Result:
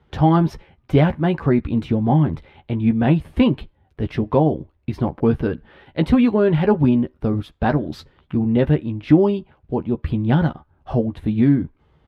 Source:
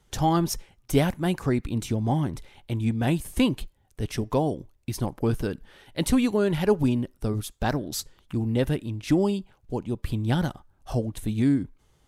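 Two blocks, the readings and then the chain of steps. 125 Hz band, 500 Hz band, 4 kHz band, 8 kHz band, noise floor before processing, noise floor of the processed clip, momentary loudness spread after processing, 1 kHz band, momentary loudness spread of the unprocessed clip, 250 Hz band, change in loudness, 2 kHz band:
+7.0 dB, +6.5 dB, -1.5 dB, under -15 dB, -65 dBFS, -62 dBFS, 11 LU, +6.0 dB, 11 LU, +7.5 dB, +7.0 dB, +4.5 dB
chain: high-pass 45 Hz; distance through air 400 m; doubling 13 ms -7.5 dB; trim +7.5 dB

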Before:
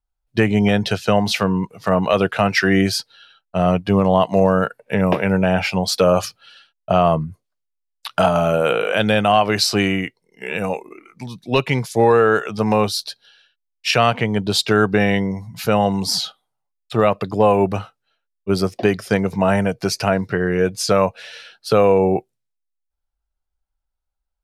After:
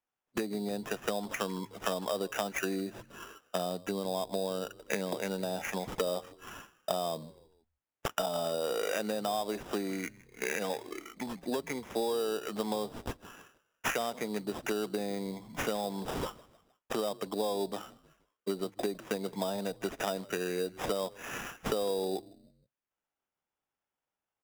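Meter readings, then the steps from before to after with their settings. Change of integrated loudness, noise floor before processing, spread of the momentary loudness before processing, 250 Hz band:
-17.0 dB, -77 dBFS, 11 LU, -17.5 dB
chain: low-pass that closes with the level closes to 890 Hz, closed at -12 dBFS; compression 6:1, threshold -30 dBFS, peak gain reduction 18 dB; high-pass 220 Hz 24 dB/octave; on a send: frequency-shifting echo 157 ms, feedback 44%, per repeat -79 Hz, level -21 dB; on the sum: sample-rate reducer 4.3 kHz, jitter 0%

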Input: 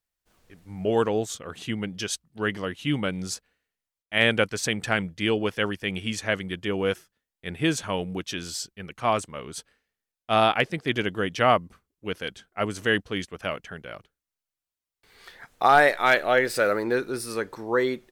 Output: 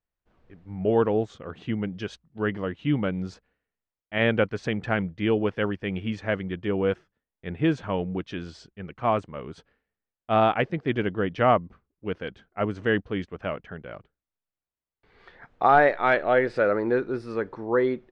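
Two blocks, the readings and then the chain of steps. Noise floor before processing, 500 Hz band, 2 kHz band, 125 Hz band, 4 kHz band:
under -85 dBFS, +1.0 dB, -4.0 dB, +2.5 dB, -9.5 dB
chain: tape spacing loss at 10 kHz 38 dB; trim +3 dB

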